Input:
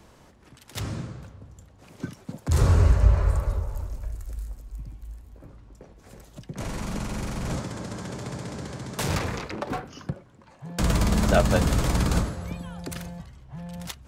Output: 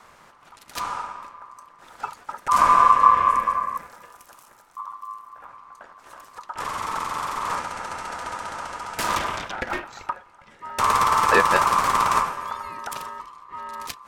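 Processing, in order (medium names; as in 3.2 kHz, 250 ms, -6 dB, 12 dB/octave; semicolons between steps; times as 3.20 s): 3.77–4.77 s: high-pass 120 Hz 24 dB/octave; ring modulator 1.1 kHz; trim +5 dB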